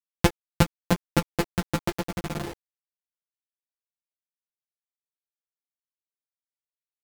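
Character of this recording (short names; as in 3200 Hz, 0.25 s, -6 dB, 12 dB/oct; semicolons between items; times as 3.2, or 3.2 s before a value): a buzz of ramps at a fixed pitch in blocks of 256 samples; tremolo triangle 1.8 Hz, depth 45%; a quantiser's noise floor 6-bit, dither none; a shimmering, thickened sound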